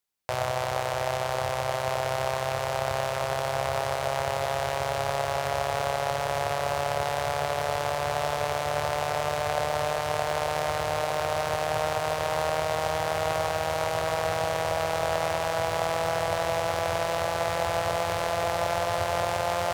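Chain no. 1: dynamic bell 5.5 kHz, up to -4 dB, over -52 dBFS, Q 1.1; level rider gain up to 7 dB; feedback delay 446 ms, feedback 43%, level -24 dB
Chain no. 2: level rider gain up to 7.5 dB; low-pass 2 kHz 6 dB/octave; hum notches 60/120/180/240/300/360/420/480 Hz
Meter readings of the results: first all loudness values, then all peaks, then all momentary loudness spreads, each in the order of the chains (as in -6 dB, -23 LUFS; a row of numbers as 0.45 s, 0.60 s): -21.5 LUFS, -22.0 LUFS; -5.0 dBFS, -6.5 dBFS; 2 LU, 2 LU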